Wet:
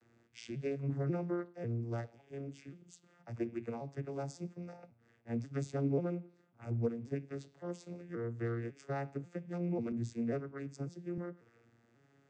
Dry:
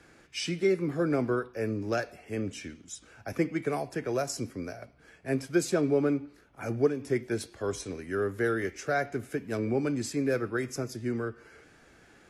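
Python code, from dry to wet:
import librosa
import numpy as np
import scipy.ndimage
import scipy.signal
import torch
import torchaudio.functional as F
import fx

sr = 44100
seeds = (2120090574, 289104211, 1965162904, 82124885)

y = fx.vocoder_arp(x, sr, chord='minor triad', root=46, every_ms=543)
y = fx.high_shelf(y, sr, hz=6300.0, db=10.0)
y = fx.band_widen(y, sr, depth_pct=40, at=(9.92, 11.18))
y = y * librosa.db_to_amplitude(-7.5)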